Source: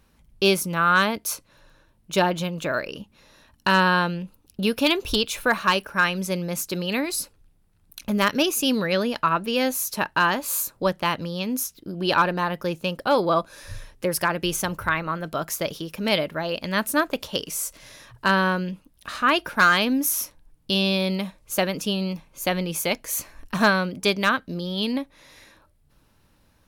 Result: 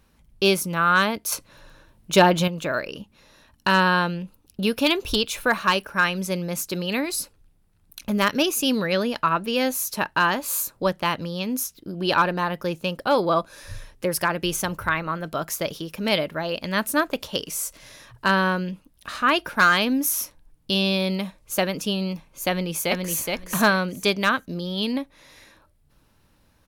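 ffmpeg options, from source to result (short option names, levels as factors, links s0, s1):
-filter_complex "[0:a]asettb=1/sr,asplit=3[s0][s1][s2];[s0]atrim=end=1.324[s3];[s1]atrim=start=1.32:end=2.48,asetpts=PTS-STARTPTS,afade=t=in:d=0.004:c=qsin,afade=t=out:st=1.156:d=0.004:c=qsin,acontrast=50[s4];[s2]atrim=start=2.476[s5];[s3][s4]acrossfade=d=0.004:c1=hsin:c2=qsin[s6];[s6][s5]acrossfade=d=0.004:c1=qsin:c2=hsin,asplit=2[s7][s8];[s8]afade=t=in:st=22.49:d=0.01,afade=t=out:st=23.19:d=0.01,aecho=0:1:420|840|1260:0.707946|0.106192|0.0159288[s9];[s7][s9]amix=inputs=2:normalize=0"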